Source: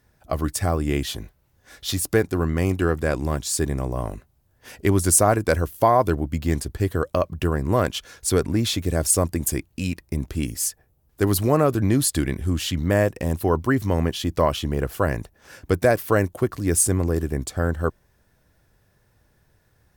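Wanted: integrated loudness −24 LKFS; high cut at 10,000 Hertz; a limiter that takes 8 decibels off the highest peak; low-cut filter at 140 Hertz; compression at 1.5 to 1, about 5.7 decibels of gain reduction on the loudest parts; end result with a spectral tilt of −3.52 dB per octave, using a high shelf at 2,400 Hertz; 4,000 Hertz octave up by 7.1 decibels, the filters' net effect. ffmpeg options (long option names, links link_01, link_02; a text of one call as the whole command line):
ffmpeg -i in.wav -af "highpass=140,lowpass=10000,highshelf=frequency=2400:gain=5.5,equalizer=frequency=4000:width_type=o:gain=4,acompressor=threshold=-26dB:ratio=1.5,volume=3.5dB,alimiter=limit=-10.5dB:level=0:latency=1" out.wav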